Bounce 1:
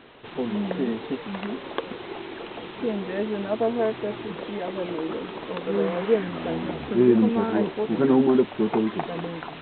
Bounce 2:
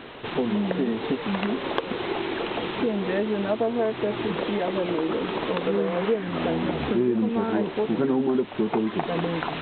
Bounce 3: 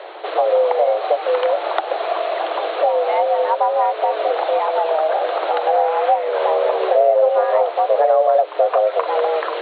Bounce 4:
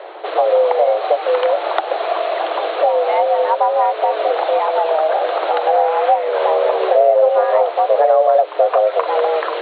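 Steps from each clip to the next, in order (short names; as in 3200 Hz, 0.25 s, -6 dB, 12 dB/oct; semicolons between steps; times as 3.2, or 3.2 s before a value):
compressor 4:1, threshold -31 dBFS, peak gain reduction 15.5 dB; gain +8.5 dB
frequency shift +310 Hz; tilt shelf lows +7.5 dB, about 780 Hz; gain +7 dB
mismatched tape noise reduction decoder only; gain +2 dB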